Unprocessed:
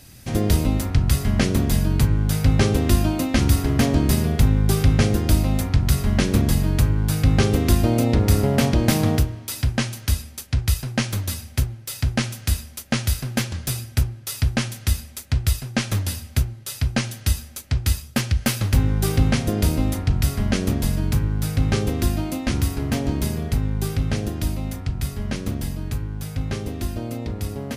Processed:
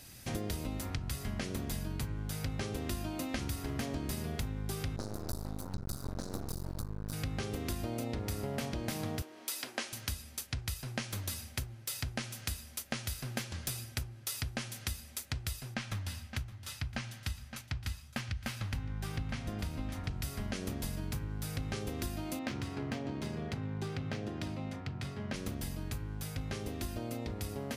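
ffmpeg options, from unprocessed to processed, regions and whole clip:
-filter_complex "[0:a]asettb=1/sr,asplit=3[a][b][c];[a]atrim=end=4.964[d];[b]atrim=start=4.96:end=7.13,asetpts=PTS-STARTPTS,afade=t=in:d=0.004:c=qsin,afade=t=out:st=2.166:d=0.004:c=qsin,asuperstop=centerf=2400:order=20:qfactor=1.1,aeval=exprs='max(val(0),0)':c=same[e];[c]atrim=start=7.126[f];[d][e]acrossfade=d=0.004:c1=hsin:c2=qsin[g];[g][f]acrossfade=d=0.004:c1=qsin:c2=hsin,asettb=1/sr,asplit=3[h][i][j];[h]atrim=end=9.224[k];[i]atrim=start=9.22:end=9.93,asetpts=PTS-STARTPTS,afade=t=in:d=0.004:c=qsin,afade=t=out:st=0.706:d=0.004:c=qsin,highpass=f=280:w=0.5412,highpass=f=280:w=1.3066,acompressor=mode=upward:threshold=-41dB:ratio=2.5:attack=3.2:release=140:knee=2.83:detection=peak[l];[j]atrim=start=9.926[m];[k][l]acrossfade=d=0.004:c1=hsin:c2=qsin[n];[n][m]acrossfade=d=0.004:c1=qsin:c2=hsin,asettb=1/sr,asplit=3[o][p][q];[o]atrim=end=15.744[r];[p]atrim=start=15.74:end=20.08,asetpts=PTS-STARTPTS,afade=t=in:d=0.004:c=qsin,afade=t=out:st=4.336:d=0.004:c=qsin,lowpass=f=2.6k:p=1,equalizer=f=420:t=o:w=1.3:g=-9.5,aecho=1:1:565:0.178,atrim=end_sample=191394[s];[q]atrim=start=20.076[t];[r][s]acrossfade=d=0.004:c1=hsin:c2=qsin[u];[u][t]acrossfade=d=0.004:c1=qsin:c2=hsin,asettb=1/sr,asplit=3[v][w][x];[v]atrim=end=22.394[y];[w]atrim=start=22.39:end=25.34,asetpts=PTS-STARTPTS,afade=t=in:d=0.004:c=qsin,afade=t=out:st=2.946:d=0.004:c=qsin,adynamicsmooth=sensitivity=2.5:basefreq=3.6k,highpass=f=94:w=0.5412,highpass=f=94:w=1.3066[z];[x]atrim=start=25.336[aa];[y][z]acrossfade=d=0.004:c1=hsin:c2=qsin[ab];[ab][aa]acrossfade=d=0.004:c1=qsin:c2=hsin,lowshelf=f=350:g=-6,acompressor=threshold=-30dB:ratio=6,volume=-4dB"

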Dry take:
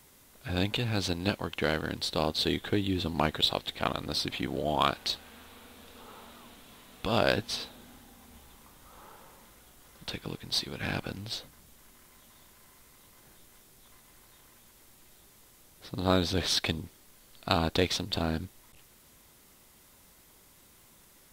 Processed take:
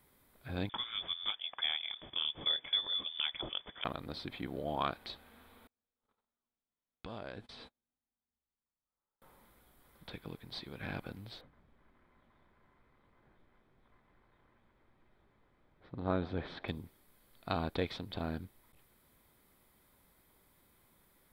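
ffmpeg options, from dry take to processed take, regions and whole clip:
-filter_complex "[0:a]asettb=1/sr,asplit=3[a][b][c];[a]atrim=end=0.694[d];[b]atrim=start=0.69:end=3.84,asetpts=PTS-STARTPTS,afade=t=in:d=0.004:c=qsin,afade=t=out:st=3.146:d=0.004:c=qsin,highpass=f=360:t=q:w=4.5,lowpass=f=3.2k:t=q:w=0.5098,lowpass=f=3.2k:t=q:w=0.6013,lowpass=f=3.2k:t=q:w=0.9,lowpass=f=3.2k:t=q:w=2.563,afreqshift=-3800[e];[c]atrim=start=3.836[f];[d][e]acrossfade=d=0.004:c1=hsin:c2=qsin[g];[g][f]acrossfade=d=0.004:c1=qsin:c2=hsin,asettb=1/sr,asplit=3[h][i][j];[h]atrim=end=5.674[k];[i]atrim=start=5.67:end=9.22,asetpts=PTS-STARTPTS,afade=t=in:d=0.004:c=qsin,afade=t=out:st=3.546:d=0.004:c=qsin,lowpass=f=9k:w=0.5412,lowpass=f=9k:w=1.3066,agate=range=-37dB:threshold=-46dB:ratio=16:release=100:detection=peak,acompressor=threshold=-34dB:ratio=4:attack=3.2:release=140:knee=1:detection=peak[l];[j]atrim=start=9.216[m];[k][l]acrossfade=d=0.004:c1=hsin:c2=qsin[n];[n][m]acrossfade=d=0.004:c1=qsin:c2=hsin,asettb=1/sr,asplit=3[o][p][q];[o]atrim=end=11.414[r];[p]atrim=start=11.41:end=16.68,asetpts=PTS-STARTPTS,afade=t=in:d=0.004:c=qsin,afade=t=out:st=5.266:d=0.004:c=qsin,lowpass=2.2k,asplit=6[s][t][u][v][w][x];[t]adelay=144,afreqshift=86,volume=-21.5dB[y];[u]adelay=288,afreqshift=172,volume=-25.8dB[z];[v]adelay=432,afreqshift=258,volume=-30.1dB[aa];[w]adelay=576,afreqshift=344,volume=-34.4dB[ab];[x]adelay=720,afreqshift=430,volume=-38.7dB[ac];[s][y][z][aa][ab][ac]amix=inputs=6:normalize=0,atrim=end_sample=232407[ad];[q]atrim=start=16.676[ae];[r][ad]acrossfade=d=0.004:c1=hsin:c2=qsin[af];[af][ae]acrossfade=d=0.004:c1=qsin:c2=hsin,acrossover=split=5800[ag][ah];[ah]acompressor=threshold=-55dB:ratio=4:attack=1:release=60[ai];[ag][ai]amix=inputs=2:normalize=0,equalizer=f=6.3k:t=o:w=0.9:g=-14,bandreject=f=2.8k:w=8.8,volume=-7.5dB"

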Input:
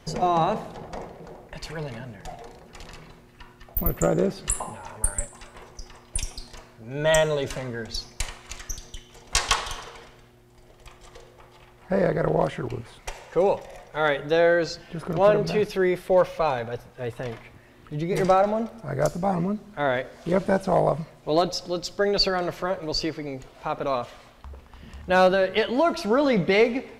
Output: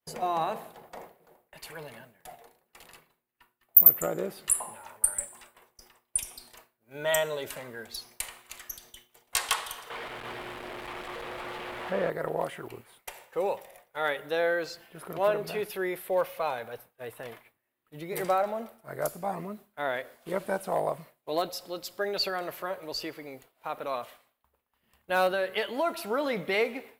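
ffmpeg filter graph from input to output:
-filter_complex "[0:a]asettb=1/sr,asplit=3[a][b][c];[a]atrim=end=9.904[d];[b]atrim=start=9.9:end=12.1,asetpts=PTS-STARTPTS,afade=t=in:d=0.004:c=qsin,afade=t=out:st=2.196:d=0.004:c=qsin,aeval=exprs='val(0)+0.5*0.0531*sgn(val(0))':c=same,lowpass=2.9k,aecho=1:1:347:0.631,atrim=end_sample=97020[e];[c]atrim=start=12.096[f];[d][e]acrossfade=d=0.004:c1=hsin:c2=qsin[g];[g][f]acrossfade=d=0.004:c1=qsin:c2=hsin,aemphasis=mode=production:type=riaa,agate=range=-33dB:threshold=-37dB:ratio=3:detection=peak,equalizer=f=6k:w=0.99:g=-14,volume=-5.5dB"

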